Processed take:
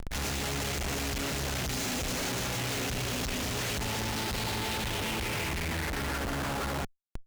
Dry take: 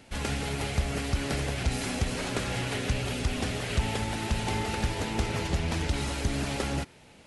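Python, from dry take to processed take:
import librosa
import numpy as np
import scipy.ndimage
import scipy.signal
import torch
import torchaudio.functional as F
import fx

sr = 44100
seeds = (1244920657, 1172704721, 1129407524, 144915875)

y = fx.filter_sweep_lowpass(x, sr, from_hz=6700.0, to_hz=1300.0, start_s=3.81, end_s=6.51, q=3.1)
y = fx.schmitt(y, sr, flips_db=-43.5)
y = fx.tube_stage(y, sr, drive_db=32.0, bias=0.7)
y = F.gain(torch.from_numpy(y), 2.0).numpy()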